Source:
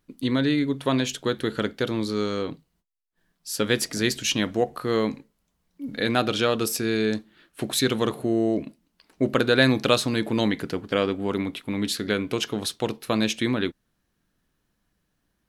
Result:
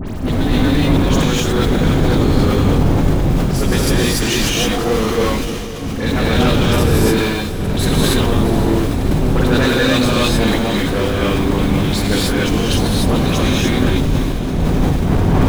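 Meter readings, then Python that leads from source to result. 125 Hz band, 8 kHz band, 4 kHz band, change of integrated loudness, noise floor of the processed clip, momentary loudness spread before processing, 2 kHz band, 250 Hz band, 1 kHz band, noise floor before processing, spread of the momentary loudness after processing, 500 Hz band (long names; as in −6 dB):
+17.0 dB, +8.5 dB, +8.0 dB, +9.0 dB, −21 dBFS, 8 LU, +7.5 dB, +10.0 dB, +10.0 dB, −75 dBFS, 5 LU, +7.5 dB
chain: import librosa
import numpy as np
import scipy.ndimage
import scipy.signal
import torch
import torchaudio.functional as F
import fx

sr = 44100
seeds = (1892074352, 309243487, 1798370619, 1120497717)

p1 = fx.dmg_wind(x, sr, seeds[0], corner_hz=220.0, level_db=-22.0)
p2 = fx.hum_notches(p1, sr, base_hz=60, count=8)
p3 = fx.schmitt(p2, sr, flips_db=-29.5)
p4 = p2 + (p3 * librosa.db_to_amplitude(-8.0))
p5 = fx.dispersion(p4, sr, late='highs', ms=66.0, hz=2900.0)
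p6 = 10.0 ** (-17.5 / 20.0) * np.tanh(p5 / 10.0 ** (-17.5 / 20.0))
p7 = p6 + fx.echo_diffused(p6, sr, ms=505, feedback_pct=70, wet_db=-14, dry=0)
p8 = fx.rev_gated(p7, sr, seeds[1], gate_ms=320, shape='rising', drr_db=-5.0)
p9 = fx.sustainer(p8, sr, db_per_s=25.0)
y = p9 * librosa.db_to_amplitude(1.5)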